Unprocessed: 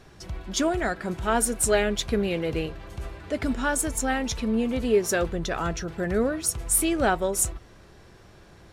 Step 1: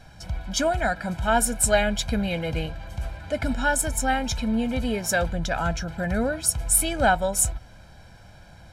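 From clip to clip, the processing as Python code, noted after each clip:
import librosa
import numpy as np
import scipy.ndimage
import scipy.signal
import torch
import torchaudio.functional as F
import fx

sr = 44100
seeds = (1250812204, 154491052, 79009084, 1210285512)

y = x + 0.81 * np.pad(x, (int(1.3 * sr / 1000.0), 0))[:len(x)]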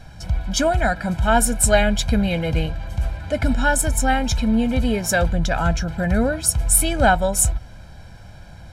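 y = fx.low_shelf(x, sr, hz=190.0, db=5.5)
y = y * 10.0 ** (3.5 / 20.0)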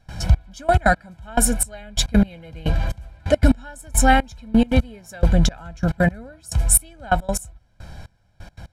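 y = fx.rider(x, sr, range_db=4, speed_s=0.5)
y = fx.step_gate(y, sr, bpm=175, pattern='.xxx....x.x....', floor_db=-24.0, edge_ms=4.5)
y = y * 10.0 ** (4.0 / 20.0)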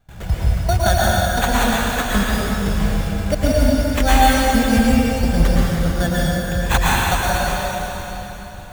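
y = fx.sample_hold(x, sr, seeds[0], rate_hz=5100.0, jitter_pct=0)
y = fx.rev_plate(y, sr, seeds[1], rt60_s=3.7, hf_ratio=0.95, predelay_ms=100, drr_db=-7.5)
y = y * 10.0 ** (-4.5 / 20.0)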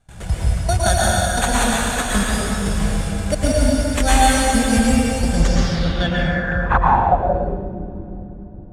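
y = fx.filter_sweep_lowpass(x, sr, from_hz=9200.0, to_hz=330.0, start_s=5.3, end_s=7.69, q=3.0)
y = y * 10.0 ** (-1.0 / 20.0)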